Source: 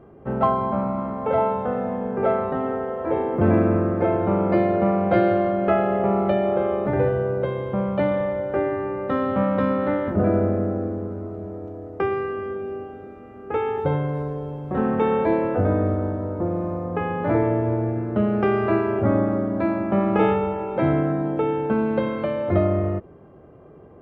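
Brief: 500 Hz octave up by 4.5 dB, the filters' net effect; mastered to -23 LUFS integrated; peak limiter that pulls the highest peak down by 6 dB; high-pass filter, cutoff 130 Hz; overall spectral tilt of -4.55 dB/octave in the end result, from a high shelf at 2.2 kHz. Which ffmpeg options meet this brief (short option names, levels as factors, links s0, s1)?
-af "highpass=130,equalizer=f=500:t=o:g=5.5,highshelf=f=2200:g=4,volume=0.75,alimiter=limit=0.251:level=0:latency=1"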